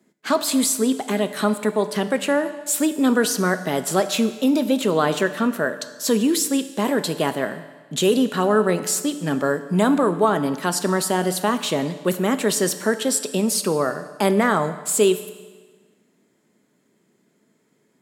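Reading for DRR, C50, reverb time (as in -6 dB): 10.0 dB, 12.0 dB, 1.4 s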